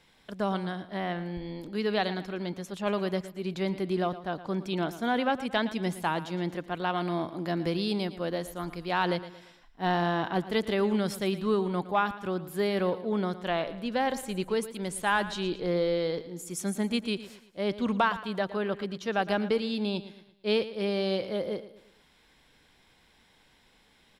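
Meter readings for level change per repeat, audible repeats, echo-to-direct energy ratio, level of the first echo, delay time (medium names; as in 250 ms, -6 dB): -7.5 dB, 3, -13.5 dB, -14.5 dB, 114 ms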